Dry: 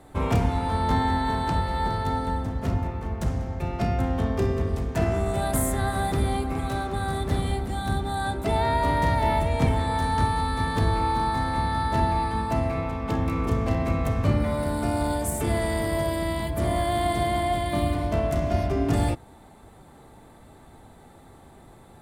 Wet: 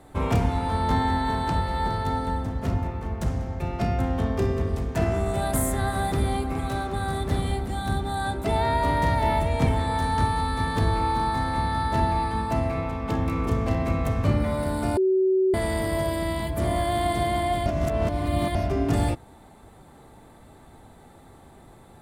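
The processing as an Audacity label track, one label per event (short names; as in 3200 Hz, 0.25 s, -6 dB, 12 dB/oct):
14.970000	15.540000	bleep 378 Hz -17.5 dBFS
17.660000	18.550000	reverse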